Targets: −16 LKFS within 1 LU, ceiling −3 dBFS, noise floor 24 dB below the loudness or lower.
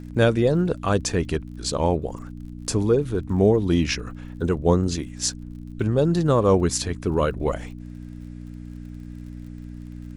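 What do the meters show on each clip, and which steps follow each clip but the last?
crackle rate 39 per second; mains hum 60 Hz; hum harmonics up to 300 Hz; level of the hum −35 dBFS; integrated loudness −23.0 LKFS; sample peak −6.0 dBFS; target loudness −16.0 LKFS
→ click removal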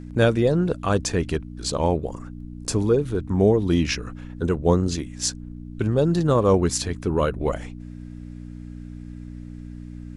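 crackle rate 0.098 per second; mains hum 60 Hz; hum harmonics up to 300 Hz; level of the hum −35 dBFS
→ hum removal 60 Hz, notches 5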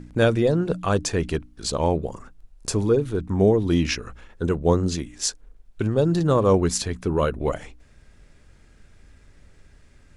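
mains hum none found; integrated loudness −23.0 LKFS; sample peak −6.5 dBFS; target loudness −16.0 LKFS
→ level +7 dB
brickwall limiter −3 dBFS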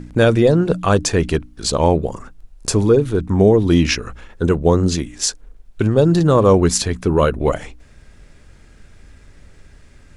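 integrated loudness −16.5 LKFS; sample peak −3.0 dBFS; background noise floor −47 dBFS

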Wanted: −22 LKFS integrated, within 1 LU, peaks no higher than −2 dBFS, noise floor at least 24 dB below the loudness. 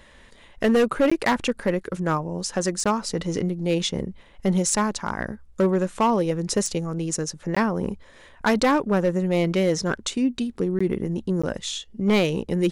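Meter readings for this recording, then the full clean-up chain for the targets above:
share of clipped samples 1.4%; peaks flattened at −14.0 dBFS; number of dropouts 5; longest dropout 15 ms; integrated loudness −24.0 LKFS; sample peak −14.0 dBFS; target loudness −22.0 LKFS
→ clipped peaks rebuilt −14 dBFS
repair the gap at 0:01.10/0:02.84/0:07.55/0:10.79/0:11.42, 15 ms
level +2 dB

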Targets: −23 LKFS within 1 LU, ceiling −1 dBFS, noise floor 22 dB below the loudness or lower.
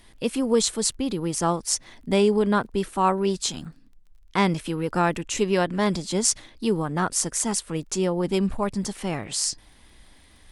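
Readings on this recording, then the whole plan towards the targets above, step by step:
crackle rate 22 per second; integrated loudness −24.5 LKFS; sample peak −4.0 dBFS; target loudness −23.0 LKFS
→ click removal
level +1.5 dB

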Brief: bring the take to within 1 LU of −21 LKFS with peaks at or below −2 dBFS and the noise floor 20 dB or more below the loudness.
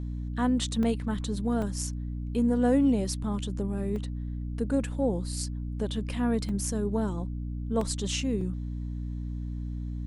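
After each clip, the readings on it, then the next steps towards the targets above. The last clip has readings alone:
number of dropouts 6; longest dropout 3.2 ms; mains hum 60 Hz; hum harmonics up to 300 Hz; level of the hum −31 dBFS; integrated loudness −30.0 LKFS; sample peak −13.5 dBFS; target loudness −21.0 LKFS
→ repair the gap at 0:00.83/0:01.62/0:03.96/0:06.49/0:07.81/0:08.41, 3.2 ms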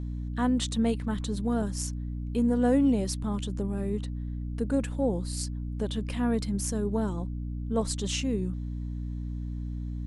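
number of dropouts 0; mains hum 60 Hz; hum harmonics up to 300 Hz; level of the hum −31 dBFS
→ mains-hum notches 60/120/180/240/300 Hz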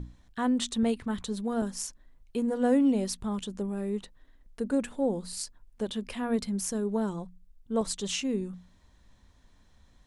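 mains hum none found; integrated loudness −31.0 LKFS; sample peak −13.5 dBFS; target loudness −21.0 LKFS
→ level +10 dB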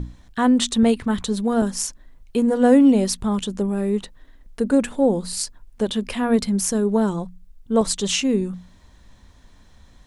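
integrated loudness −21.0 LKFS; sample peak −3.5 dBFS; background noise floor −51 dBFS

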